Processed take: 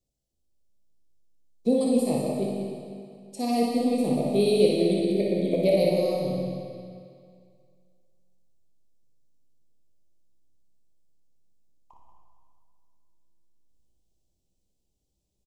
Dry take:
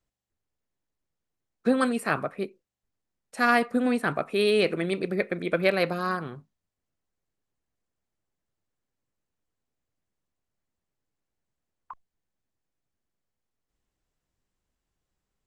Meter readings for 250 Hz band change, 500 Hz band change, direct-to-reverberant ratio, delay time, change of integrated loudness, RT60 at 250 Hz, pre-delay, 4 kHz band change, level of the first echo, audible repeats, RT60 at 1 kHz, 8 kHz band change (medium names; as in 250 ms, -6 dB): +3.5 dB, +3.5 dB, -3.5 dB, 59 ms, +1.0 dB, 2.1 s, 15 ms, -1.0 dB, -5.0 dB, 2, 2.2 s, +4.5 dB